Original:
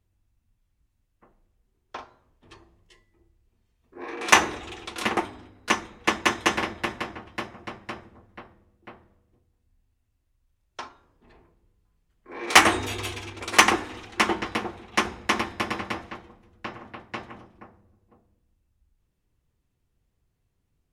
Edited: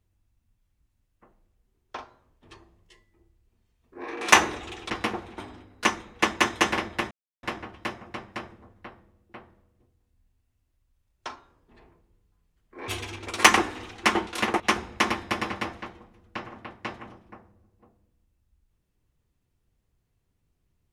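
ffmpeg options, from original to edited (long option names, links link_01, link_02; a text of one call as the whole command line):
ffmpeg -i in.wav -filter_complex "[0:a]asplit=7[link_01][link_02][link_03][link_04][link_05][link_06][link_07];[link_01]atrim=end=4.902[link_08];[link_02]atrim=start=14.408:end=14.892[link_09];[link_03]atrim=start=5.228:end=6.96,asetpts=PTS-STARTPTS,afade=type=out:start_time=1.728:duration=0.004:curve=hsin,apad=pad_dur=0.32[link_10];[link_04]atrim=start=6.96:end=12.412,asetpts=PTS-STARTPTS,afade=type=in:duration=0.004:curve=hsin[link_11];[link_05]atrim=start=13.018:end=14.412[link_12];[link_06]atrim=start=4.898:end=5.232[link_13];[link_07]atrim=start=14.888[link_14];[link_08][link_09]acrossfade=duration=0.004:curve1=hsin:curve2=hsin[link_15];[link_10][link_11]concat=n=2:v=0:a=1[link_16];[link_15][link_16]acrossfade=duration=0.004:curve1=hsin:curve2=hsin[link_17];[link_17][link_12]acrossfade=duration=0.004:curve1=hsin:curve2=hsin[link_18];[link_18][link_13]acrossfade=duration=0.004:curve1=hsin:curve2=hsin[link_19];[link_19][link_14]acrossfade=duration=0.004:curve1=hsin:curve2=hsin" out.wav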